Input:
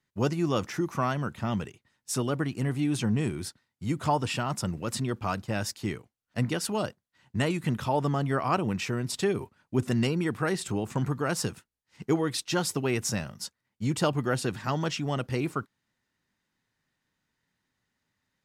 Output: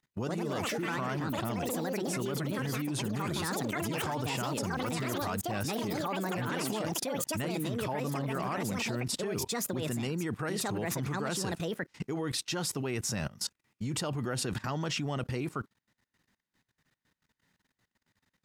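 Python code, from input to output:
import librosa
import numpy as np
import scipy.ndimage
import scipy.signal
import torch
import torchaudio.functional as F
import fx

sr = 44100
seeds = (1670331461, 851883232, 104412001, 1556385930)

y = fx.echo_pitch(x, sr, ms=139, semitones=5, count=3, db_per_echo=-3.0)
y = fx.level_steps(y, sr, step_db=20)
y = y * 10.0 ** (7.0 / 20.0)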